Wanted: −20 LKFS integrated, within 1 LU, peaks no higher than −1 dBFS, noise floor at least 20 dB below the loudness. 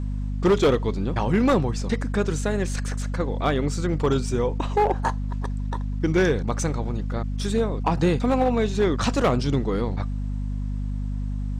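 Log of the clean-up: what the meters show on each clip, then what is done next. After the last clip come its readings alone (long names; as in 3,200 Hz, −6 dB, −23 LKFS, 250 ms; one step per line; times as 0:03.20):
share of clipped samples 0.9%; peaks flattened at −13.5 dBFS; mains hum 50 Hz; hum harmonics up to 250 Hz; level of the hum −25 dBFS; integrated loudness −24.5 LKFS; sample peak −13.5 dBFS; target loudness −20.0 LKFS
→ clipped peaks rebuilt −13.5 dBFS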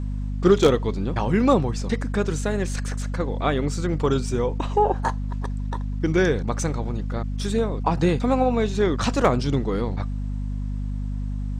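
share of clipped samples 0.0%; mains hum 50 Hz; hum harmonics up to 250 Hz; level of the hum −25 dBFS
→ hum removal 50 Hz, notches 5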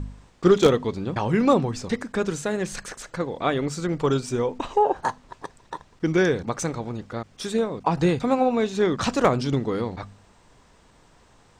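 mains hum none found; integrated loudness −24.0 LKFS; sample peak −4.0 dBFS; target loudness −20.0 LKFS
→ level +4 dB
brickwall limiter −1 dBFS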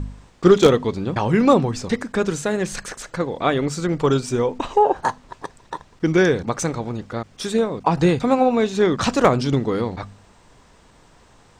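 integrated loudness −20.0 LKFS; sample peak −1.0 dBFS; background noise floor −52 dBFS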